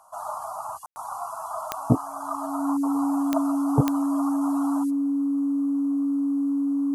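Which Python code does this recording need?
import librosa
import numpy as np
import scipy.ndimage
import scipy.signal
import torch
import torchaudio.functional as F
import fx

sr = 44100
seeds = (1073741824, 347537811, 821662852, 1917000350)

y = fx.fix_declick_ar(x, sr, threshold=10.0)
y = fx.notch(y, sr, hz=280.0, q=30.0)
y = fx.fix_ambience(y, sr, seeds[0], print_start_s=1.96, print_end_s=2.46, start_s=0.86, end_s=0.96)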